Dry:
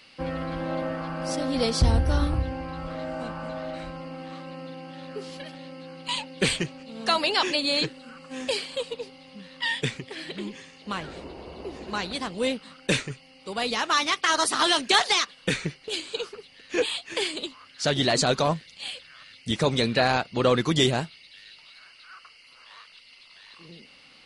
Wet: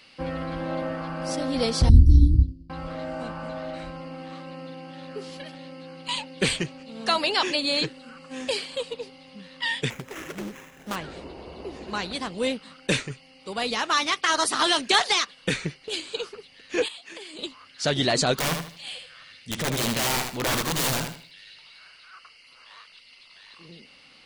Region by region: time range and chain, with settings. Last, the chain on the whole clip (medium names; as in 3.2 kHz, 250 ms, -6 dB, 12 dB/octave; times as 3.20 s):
1.89–2.70 s: expander -23 dBFS + inverse Chebyshev band-stop 650–2100 Hz, stop band 50 dB + tilt EQ -2.5 dB/octave
9.90–10.96 s: sample-rate reducer 4.5 kHz + loudspeaker Doppler distortion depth 0.44 ms
16.88–17.39 s: high-pass 160 Hz 24 dB/octave + compression, threshold -38 dBFS
18.38–22.14 s: transient shaper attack -9 dB, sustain -1 dB + integer overflow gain 20 dB + feedback delay 78 ms, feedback 30%, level -6 dB
whole clip: none